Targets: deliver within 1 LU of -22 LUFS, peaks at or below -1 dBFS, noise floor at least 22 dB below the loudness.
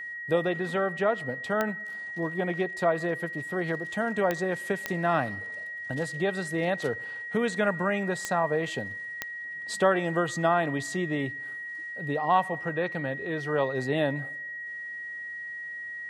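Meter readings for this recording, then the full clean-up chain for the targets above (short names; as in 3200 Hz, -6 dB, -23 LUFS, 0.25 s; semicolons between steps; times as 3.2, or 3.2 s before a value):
clicks 5; steady tone 1900 Hz; tone level -35 dBFS; loudness -29.0 LUFS; peak -10.0 dBFS; loudness target -22.0 LUFS
-> de-click; notch 1900 Hz, Q 30; gain +7 dB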